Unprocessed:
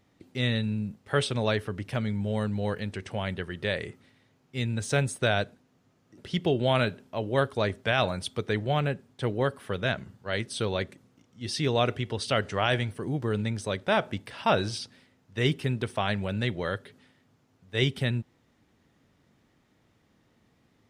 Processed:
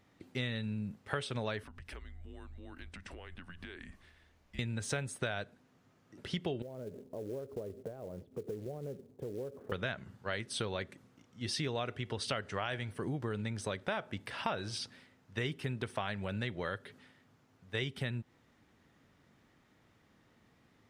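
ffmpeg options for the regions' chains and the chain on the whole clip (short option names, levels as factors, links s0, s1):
-filter_complex "[0:a]asettb=1/sr,asplit=3[s0][s1][s2];[s0]atrim=end=1.634[s3];[s1]atrim=start=1.63:end=4.59,asetpts=PTS-STARTPTS,afade=t=in:d=0.004:c=qsin,afade=t=out:st=2.956:d=0.004:c=qsin,equalizer=f=1500:w=4.5:g=-3.5,acompressor=threshold=0.00794:ratio=10:attack=3.2:release=140:knee=1:detection=peak,afreqshift=-180[s4];[s2]atrim=start=4.586[s5];[s3][s4]acrossfade=d=0.004:c1=hsin:c2=qsin[s6];[s6][s5]acrossfade=d=0.004:c1=qsin:c2=hsin,asettb=1/sr,asplit=3[s7][s8][s9];[s7]atrim=end=6.624[s10];[s8]atrim=start=6.62:end=9.72,asetpts=PTS-STARTPTS,afade=t=in:d=0.004:c=qsin,afade=t=out:st=3.096:d=0.004:c=qsin,acompressor=threshold=0.0112:ratio=10:attack=3.2:release=140:knee=1:detection=peak,lowpass=f=460:t=q:w=2.8,acrusher=bits=6:mode=log:mix=0:aa=0.000001[s11];[s9]atrim=start=9.716[s12];[s10][s11]acrossfade=d=0.004:c1=hsin:c2=qsin[s13];[s13][s12]acrossfade=d=0.004:c1=qsin:c2=hsin,equalizer=f=1500:t=o:w=1.7:g=4,acompressor=threshold=0.0282:ratio=6,volume=0.794"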